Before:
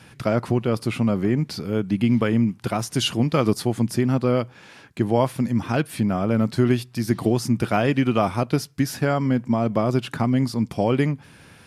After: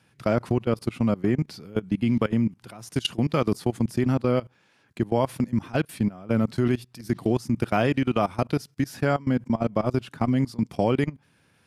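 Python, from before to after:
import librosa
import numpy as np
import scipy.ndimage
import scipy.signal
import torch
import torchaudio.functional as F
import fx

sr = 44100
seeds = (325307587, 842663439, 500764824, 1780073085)

y = scipy.signal.sosfilt(scipy.signal.butter(2, 64.0, 'highpass', fs=sr, output='sos'), x)
y = fx.level_steps(y, sr, step_db=21)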